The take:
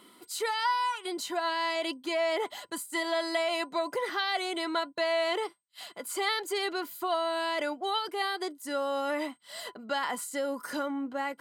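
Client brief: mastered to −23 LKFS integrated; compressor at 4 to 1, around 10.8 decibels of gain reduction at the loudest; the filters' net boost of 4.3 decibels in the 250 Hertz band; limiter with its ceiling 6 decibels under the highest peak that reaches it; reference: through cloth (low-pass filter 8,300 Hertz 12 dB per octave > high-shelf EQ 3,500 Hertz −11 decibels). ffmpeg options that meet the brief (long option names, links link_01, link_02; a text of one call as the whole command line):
ffmpeg -i in.wav -af "equalizer=frequency=250:width_type=o:gain=6,acompressor=threshold=-38dB:ratio=4,alimiter=level_in=8.5dB:limit=-24dB:level=0:latency=1,volume=-8.5dB,lowpass=8300,highshelf=frequency=3500:gain=-11,volume=19.5dB" out.wav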